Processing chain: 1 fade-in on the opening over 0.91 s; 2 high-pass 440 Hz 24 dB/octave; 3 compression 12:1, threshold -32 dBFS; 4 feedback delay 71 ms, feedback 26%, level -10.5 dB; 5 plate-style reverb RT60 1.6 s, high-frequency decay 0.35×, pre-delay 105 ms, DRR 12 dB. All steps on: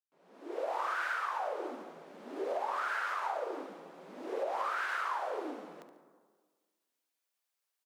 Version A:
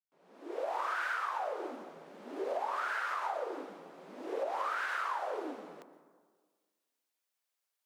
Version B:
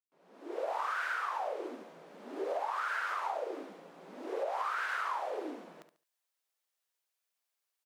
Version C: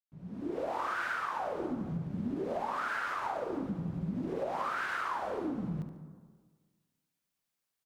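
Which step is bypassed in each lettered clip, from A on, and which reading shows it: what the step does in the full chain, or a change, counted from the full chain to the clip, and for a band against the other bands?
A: 4, echo-to-direct -8.0 dB to -12.0 dB; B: 5, echo-to-direct -8.0 dB to -10.0 dB; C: 2, 250 Hz band +11.5 dB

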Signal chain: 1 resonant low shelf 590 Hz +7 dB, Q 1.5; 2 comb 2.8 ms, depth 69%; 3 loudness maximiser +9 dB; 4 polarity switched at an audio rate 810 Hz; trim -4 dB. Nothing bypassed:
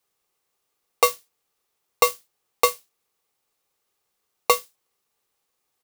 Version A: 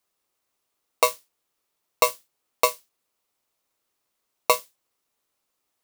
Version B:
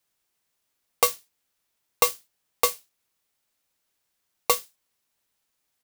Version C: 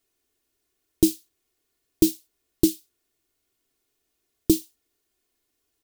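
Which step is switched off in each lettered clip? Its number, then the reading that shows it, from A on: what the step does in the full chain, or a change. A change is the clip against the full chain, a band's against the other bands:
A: 2, crest factor change +1.5 dB; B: 1, 8 kHz band +5.0 dB; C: 4, momentary loudness spread change +8 LU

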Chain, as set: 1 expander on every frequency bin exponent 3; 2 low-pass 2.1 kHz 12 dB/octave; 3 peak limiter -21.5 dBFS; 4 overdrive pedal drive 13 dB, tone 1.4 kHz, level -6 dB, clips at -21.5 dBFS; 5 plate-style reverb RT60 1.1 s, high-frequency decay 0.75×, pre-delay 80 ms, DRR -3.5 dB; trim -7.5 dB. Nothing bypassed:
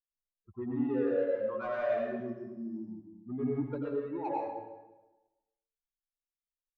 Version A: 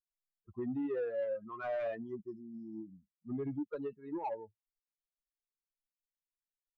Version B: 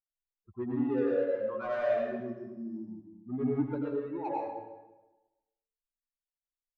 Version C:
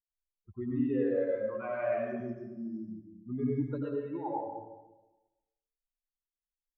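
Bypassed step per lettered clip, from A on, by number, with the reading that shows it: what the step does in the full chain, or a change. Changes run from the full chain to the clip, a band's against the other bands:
5, momentary loudness spread change -2 LU; 3, loudness change +1.5 LU; 4, 125 Hz band +4.5 dB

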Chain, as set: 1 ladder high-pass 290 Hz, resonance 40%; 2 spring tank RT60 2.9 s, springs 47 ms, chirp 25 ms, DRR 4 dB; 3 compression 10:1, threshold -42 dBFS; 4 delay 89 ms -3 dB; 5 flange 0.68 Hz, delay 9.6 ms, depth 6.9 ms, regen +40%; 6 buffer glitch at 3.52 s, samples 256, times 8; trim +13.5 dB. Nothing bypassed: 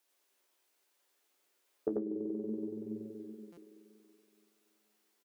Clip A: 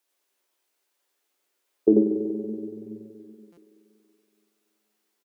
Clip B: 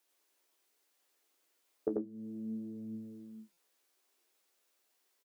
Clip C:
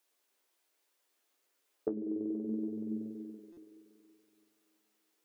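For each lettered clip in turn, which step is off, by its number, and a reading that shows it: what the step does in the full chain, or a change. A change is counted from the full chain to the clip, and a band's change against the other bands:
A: 3, mean gain reduction 6.0 dB; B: 2, loudness change -2.0 LU; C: 4, loudness change +1.5 LU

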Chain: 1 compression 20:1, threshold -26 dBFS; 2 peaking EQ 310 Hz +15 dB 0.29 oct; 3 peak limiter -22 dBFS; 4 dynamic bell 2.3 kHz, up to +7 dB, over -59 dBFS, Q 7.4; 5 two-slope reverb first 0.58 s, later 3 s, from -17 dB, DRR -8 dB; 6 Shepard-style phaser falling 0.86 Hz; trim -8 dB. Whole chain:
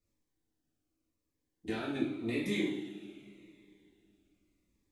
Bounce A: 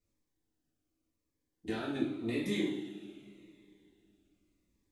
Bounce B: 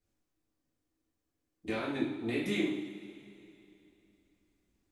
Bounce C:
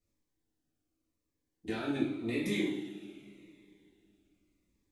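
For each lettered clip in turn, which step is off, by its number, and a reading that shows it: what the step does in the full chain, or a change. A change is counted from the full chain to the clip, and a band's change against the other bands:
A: 4, 2 kHz band -2.0 dB; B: 6, 1 kHz band +2.0 dB; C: 1, mean gain reduction 5.5 dB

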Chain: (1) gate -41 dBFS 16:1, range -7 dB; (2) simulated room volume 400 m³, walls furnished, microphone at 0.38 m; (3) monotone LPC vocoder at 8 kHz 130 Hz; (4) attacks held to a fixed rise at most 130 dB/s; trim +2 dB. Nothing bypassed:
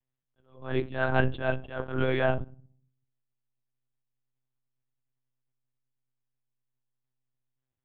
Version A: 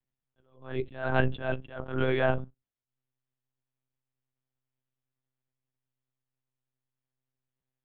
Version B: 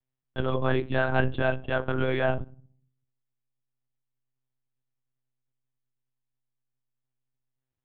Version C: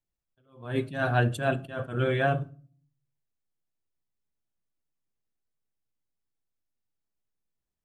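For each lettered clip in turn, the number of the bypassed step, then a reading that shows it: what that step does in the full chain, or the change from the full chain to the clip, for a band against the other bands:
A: 2, momentary loudness spread change +2 LU; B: 4, crest factor change -2.5 dB; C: 3, 125 Hz band +3.0 dB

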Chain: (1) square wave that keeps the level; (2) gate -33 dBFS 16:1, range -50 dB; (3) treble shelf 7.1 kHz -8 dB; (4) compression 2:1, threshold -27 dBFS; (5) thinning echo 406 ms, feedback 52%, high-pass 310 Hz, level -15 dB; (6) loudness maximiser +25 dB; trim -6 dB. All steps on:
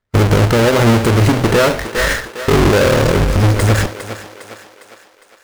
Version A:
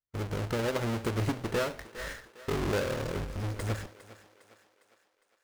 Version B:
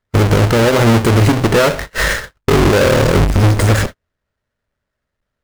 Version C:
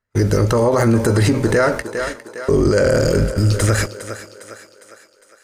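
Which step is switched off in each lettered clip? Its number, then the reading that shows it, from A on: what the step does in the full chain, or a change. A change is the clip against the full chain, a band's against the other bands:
6, crest factor change +6.0 dB; 5, momentary loudness spread change -2 LU; 1, distortion -5 dB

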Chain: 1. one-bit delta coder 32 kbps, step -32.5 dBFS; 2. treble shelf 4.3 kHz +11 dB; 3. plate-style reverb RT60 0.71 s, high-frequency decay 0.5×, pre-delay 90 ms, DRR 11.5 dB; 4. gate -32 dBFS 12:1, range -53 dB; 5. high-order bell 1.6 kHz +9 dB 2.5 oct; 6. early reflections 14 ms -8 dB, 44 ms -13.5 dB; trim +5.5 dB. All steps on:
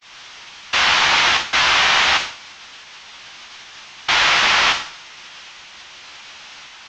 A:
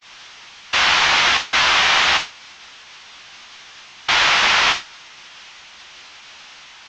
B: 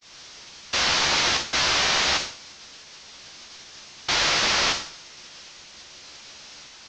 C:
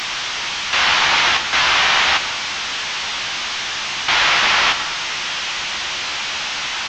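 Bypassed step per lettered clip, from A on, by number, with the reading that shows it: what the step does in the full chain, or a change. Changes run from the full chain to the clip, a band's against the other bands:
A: 3, momentary loudness spread change -2 LU; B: 5, 2 kHz band -8.0 dB; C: 4, momentary loudness spread change -2 LU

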